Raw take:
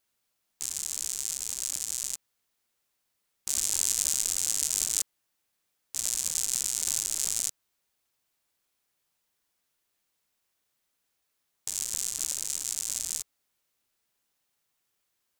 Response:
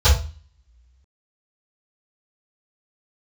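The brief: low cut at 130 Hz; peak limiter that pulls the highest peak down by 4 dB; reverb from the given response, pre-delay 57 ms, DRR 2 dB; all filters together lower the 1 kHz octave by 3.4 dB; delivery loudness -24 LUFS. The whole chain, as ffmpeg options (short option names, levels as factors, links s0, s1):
-filter_complex "[0:a]highpass=130,equalizer=f=1000:t=o:g=-4.5,alimiter=limit=0.376:level=0:latency=1,asplit=2[s0][s1];[1:a]atrim=start_sample=2205,adelay=57[s2];[s1][s2]afir=irnorm=-1:irlink=0,volume=0.0794[s3];[s0][s3]amix=inputs=2:normalize=0,volume=1.68"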